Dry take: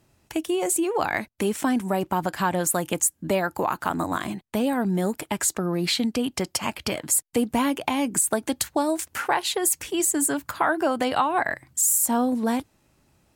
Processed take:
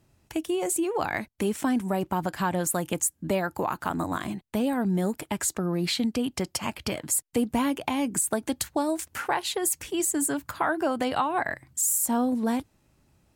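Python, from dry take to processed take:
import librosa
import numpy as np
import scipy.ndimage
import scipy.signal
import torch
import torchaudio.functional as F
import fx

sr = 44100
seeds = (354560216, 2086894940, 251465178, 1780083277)

y = fx.low_shelf(x, sr, hz=210.0, db=5.5)
y = F.gain(torch.from_numpy(y), -4.0).numpy()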